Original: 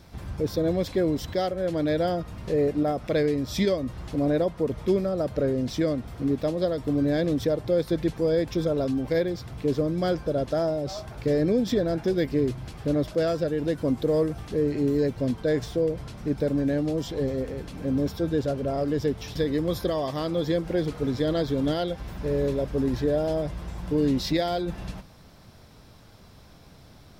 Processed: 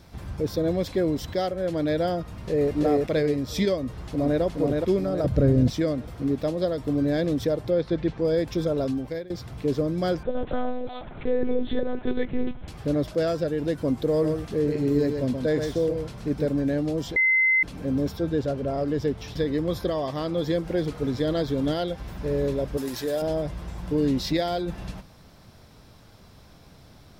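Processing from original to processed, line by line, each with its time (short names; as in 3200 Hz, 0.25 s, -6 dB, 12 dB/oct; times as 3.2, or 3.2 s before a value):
2.27–2.73 echo throw 0.33 s, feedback 30%, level 0 dB
3.77–4.42 echo throw 0.42 s, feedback 45%, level -2.5 dB
5.24–5.7 tone controls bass +13 dB, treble 0 dB
7.7–8.25 LPF 3900 Hz
8.89–9.3 fade out, to -20 dB
10.23–12.68 monotone LPC vocoder at 8 kHz 250 Hz
14.11–16.48 echo 0.127 s -6 dB
17.16–17.63 bleep 2060 Hz -17 dBFS
18.17–20.38 high shelf 6300 Hz -6 dB
22.77–23.22 RIAA curve recording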